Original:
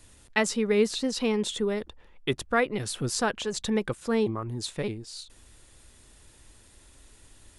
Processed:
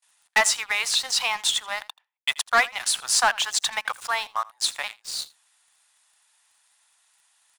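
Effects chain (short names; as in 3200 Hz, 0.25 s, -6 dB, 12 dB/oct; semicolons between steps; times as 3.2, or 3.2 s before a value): steep high-pass 730 Hz 48 dB/oct; gate with hold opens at -49 dBFS; sample leveller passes 3; echo 82 ms -22 dB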